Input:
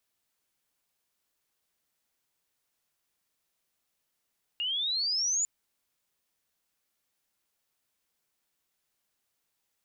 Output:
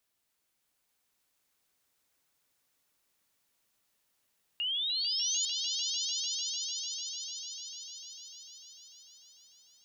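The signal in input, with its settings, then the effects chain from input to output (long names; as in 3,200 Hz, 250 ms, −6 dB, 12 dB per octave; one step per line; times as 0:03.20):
glide logarithmic 2,800 Hz → 7,100 Hz −28.5 dBFS → −25 dBFS 0.85 s
brickwall limiter −29.5 dBFS
echo that builds up and dies away 149 ms, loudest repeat 5, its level −8 dB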